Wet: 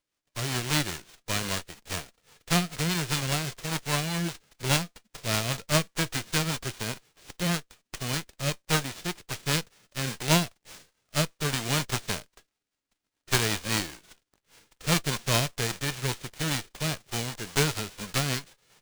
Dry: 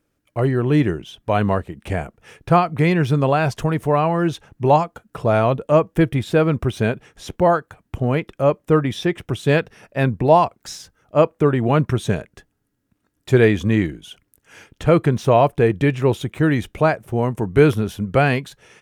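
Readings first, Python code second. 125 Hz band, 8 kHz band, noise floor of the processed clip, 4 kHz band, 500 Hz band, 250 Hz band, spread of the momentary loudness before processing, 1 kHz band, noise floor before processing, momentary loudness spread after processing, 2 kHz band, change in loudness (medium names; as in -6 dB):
-11.0 dB, +10.5 dB, -84 dBFS, +5.5 dB, -17.5 dB, -13.0 dB, 11 LU, -13.5 dB, -72 dBFS, 10 LU, -5.0 dB, -10.0 dB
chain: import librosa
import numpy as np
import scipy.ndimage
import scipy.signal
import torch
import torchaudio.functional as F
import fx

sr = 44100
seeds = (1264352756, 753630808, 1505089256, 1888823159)

y = fx.envelope_flatten(x, sr, power=0.1)
y = fx.rotary(y, sr, hz=5.0)
y = fx.running_max(y, sr, window=3)
y = y * 10.0 ** (-8.5 / 20.0)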